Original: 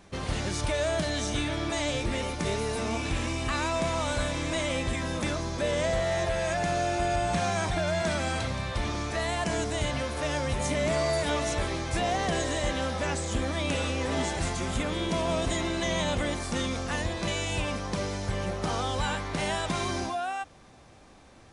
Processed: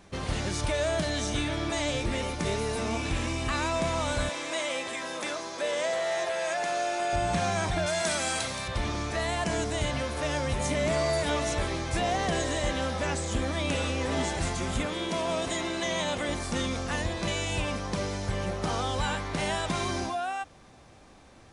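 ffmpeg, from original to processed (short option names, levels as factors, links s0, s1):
-filter_complex "[0:a]asettb=1/sr,asplit=3[s0][s1][s2];[s0]atrim=end=4.294[s3];[s1]atrim=start=4.29:end=7.13,asetpts=PTS-STARTPTS,afade=t=in:d=0.004:c=qsin,afade=t=out:st=2.836:d=0.004:c=qsin,highpass=440[s4];[s2]atrim=start=7.126[s5];[s3][s4]acrossfade=d=0.004:c1=hsin:c2=qsin[s6];[s6][s5]acrossfade=d=0.004:c1=qsin:c2=hsin,asettb=1/sr,asplit=3[s7][s8][s9];[s7]atrim=end=7.864[s10];[s8]atrim=start=7.86:end=8.68,asetpts=PTS-STARTPTS,afade=t=in:d=0.004:c=qsin,afade=t=out:st=0.816:d=0.004:c=qsin,aemphasis=mode=production:type=bsi[s11];[s9]atrim=start=8.676[s12];[s10][s11]acrossfade=d=0.004:c1=hsin:c2=qsin[s13];[s13][s12]acrossfade=d=0.004:c1=qsin:c2=hsin,asettb=1/sr,asplit=3[s14][s15][s16];[s14]atrim=end=14.864[s17];[s15]atrim=start=14.86:end=16.29,asetpts=PTS-STARTPTS,afade=t=in:d=0.004:c=qsin,afade=t=out:st=1.426:d=0.004:c=qsin,highpass=f=260:p=1[s18];[s16]atrim=start=16.286[s19];[s17][s18]acrossfade=d=0.004:c1=hsin:c2=qsin[s20];[s20][s19]acrossfade=d=0.004:c1=qsin:c2=hsin"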